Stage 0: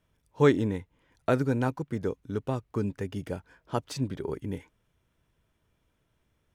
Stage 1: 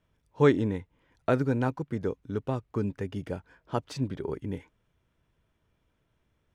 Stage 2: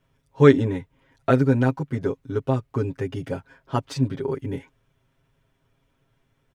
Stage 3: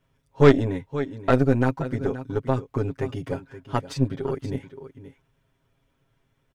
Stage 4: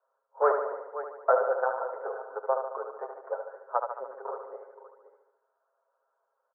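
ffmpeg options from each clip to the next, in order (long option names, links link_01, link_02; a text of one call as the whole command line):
ffmpeg -i in.wav -af "highshelf=frequency=7200:gain=-10.5" out.wav
ffmpeg -i in.wav -af "aecho=1:1:7.4:0.94,volume=3dB" out.wav
ffmpeg -i in.wav -af "aecho=1:1:525:0.224,aeval=exprs='0.891*(cos(1*acos(clip(val(0)/0.891,-1,1)))-cos(1*PI/2))+0.1*(cos(6*acos(clip(val(0)/0.891,-1,1)))-cos(6*PI/2))':channel_layout=same,volume=-1.5dB" out.wav
ffmpeg -i in.wav -af "asuperpass=centerf=840:order=12:qfactor=0.85,aecho=1:1:73|146|219|292|365|438|511|584:0.473|0.279|0.165|0.0972|0.0573|0.0338|0.02|0.0118" out.wav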